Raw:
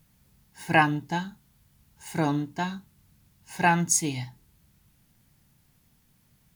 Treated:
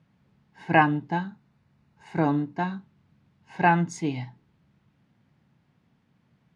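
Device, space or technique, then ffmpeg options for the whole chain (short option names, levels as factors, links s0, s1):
phone in a pocket: -filter_complex "[0:a]asettb=1/sr,asplit=3[s0][s1][s2];[s0]atrim=end=1.114[s3];[s1]atrim=start=1.11:end=2.73,asetpts=PTS-STARTPTS,afade=t=in:d=0.004:c=qsin,afade=t=out:st=1.616:d=0.004:c=qsin,bandreject=f=3200:w=8.3[s4];[s2]atrim=start=2.726[s5];[s3][s4]acrossfade=d=0.004:c1=hsin:c2=qsin[s6];[s6][s5]acrossfade=d=0.004:c1=qsin:c2=hsin,highpass=130,lowpass=3600,highshelf=f=2500:g=-10,volume=1.41"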